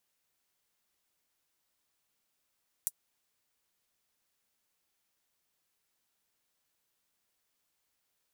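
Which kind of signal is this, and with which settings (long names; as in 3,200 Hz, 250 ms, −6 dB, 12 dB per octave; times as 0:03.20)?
closed synth hi-hat, high-pass 8,400 Hz, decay 0.05 s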